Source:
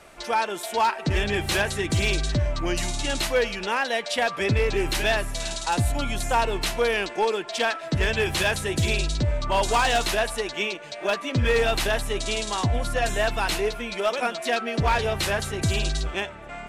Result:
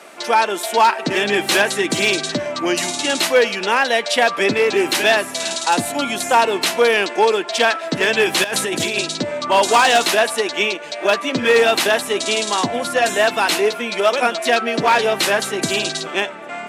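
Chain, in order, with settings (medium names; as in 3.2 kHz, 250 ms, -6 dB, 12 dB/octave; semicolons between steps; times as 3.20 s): high-pass 210 Hz 24 dB/octave; 8.44–8.99 s: compressor with a negative ratio -30 dBFS, ratio -1; trim +8.5 dB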